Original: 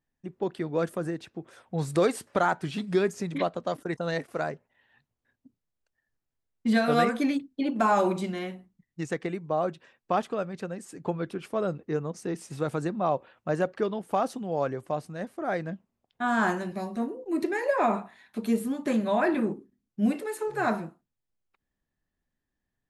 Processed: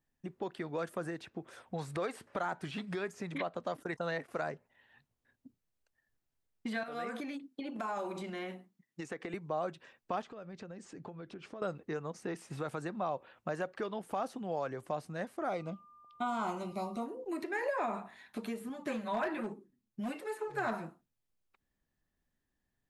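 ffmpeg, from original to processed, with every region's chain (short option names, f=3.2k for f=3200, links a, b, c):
-filter_complex "[0:a]asettb=1/sr,asplit=3[a][b][c];[a]atrim=end=6.834[d];[b]atrim=start=6.83:end=9.34,asetpts=PTS-STARTPTS,afade=t=in:d=0.004:c=qsin,afade=t=out:st=2.506:d=0.004:c=qsin,highpass=230,acompressor=threshold=-34dB:ratio=5:attack=3.2:release=140:knee=1:detection=peak[e];[c]atrim=start=9.336[f];[d][e]acrossfade=d=0.004:c1=hsin:c2=qsin[g];[g][f]acrossfade=d=0.004:c1=qsin:c2=hsin,asettb=1/sr,asplit=3[h][i][j];[h]atrim=end=10.224[k];[i]atrim=start=10.22:end=11.62,asetpts=PTS-STARTPTS,afade=t=in:d=0.004:c=qsin,afade=t=out:st=1.396:d=0.004:c=qsin,lowpass=f=6.8k:w=0.5412,lowpass=f=6.8k:w=1.3066,acompressor=threshold=-44dB:ratio=5:attack=3.2:release=140:knee=1:detection=peak[l];[j]atrim=start=11.616[m];[k][l]acrossfade=d=0.004:c1=hsin:c2=qsin[n];[n][m]acrossfade=d=0.004:c1=qsin:c2=hsin,asettb=1/sr,asplit=3[o][p][q];[o]atrim=end=15.494[r];[p]atrim=start=15.49:end=17.06,asetpts=PTS-STARTPTS,afade=t=in:d=0.004:c=qsin,afade=t=out:st=1.566:d=0.004:c=qsin,aeval=exprs='val(0)+0.00158*sin(2*PI*1200*n/s)':c=same,asuperstop=centerf=1700:order=4:qfactor=2.5[s];[q]atrim=start=17.056[t];[r][s]acrossfade=d=0.004:c1=hsin:c2=qsin[u];[u][t]acrossfade=d=0.004:c1=qsin:c2=hsin,asettb=1/sr,asplit=3[v][w][x];[v]atrim=end=18.694[y];[w]atrim=start=18.69:end=20.73,asetpts=PTS-STARTPTS,afade=t=in:d=0.004:c=qsin,afade=t=out:st=2.036:d=0.004:c=qsin,flanger=delay=4.6:depth=4.7:regen=13:speed=1.2:shape=sinusoidal,asoftclip=type=hard:threshold=-21.5dB[z];[x]atrim=start=20.726[aa];[y][z]acrossfade=d=0.004:c1=hsin:c2=qsin[ab];[ab][aa]acrossfade=d=0.004:c1=qsin:c2=hsin,alimiter=limit=-21dB:level=0:latency=1:release=278,acrossover=split=610|3000[ac][ad][ae];[ac]acompressor=threshold=-40dB:ratio=4[af];[ad]acompressor=threshold=-33dB:ratio=4[ag];[ae]acompressor=threshold=-57dB:ratio=4[ah];[af][ag][ah]amix=inputs=3:normalize=0"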